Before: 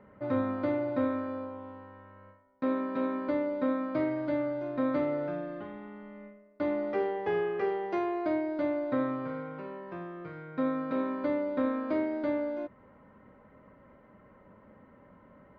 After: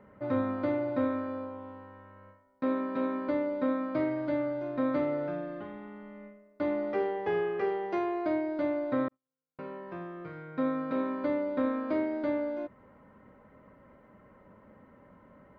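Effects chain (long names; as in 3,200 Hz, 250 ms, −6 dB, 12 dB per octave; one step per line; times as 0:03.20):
0:09.08–0:09.59: noise gate −27 dBFS, range −58 dB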